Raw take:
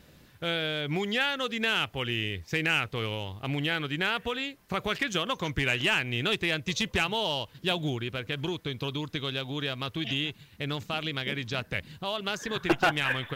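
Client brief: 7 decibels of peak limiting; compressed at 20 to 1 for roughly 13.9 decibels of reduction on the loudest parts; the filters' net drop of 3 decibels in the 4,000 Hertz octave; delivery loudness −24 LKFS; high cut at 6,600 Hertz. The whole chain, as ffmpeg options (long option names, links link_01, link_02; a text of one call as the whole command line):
ffmpeg -i in.wav -af "lowpass=6600,equalizer=frequency=4000:width_type=o:gain=-4,acompressor=threshold=-33dB:ratio=20,volume=16dB,alimiter=limit=-13dB:level=0:latency=1" out.wav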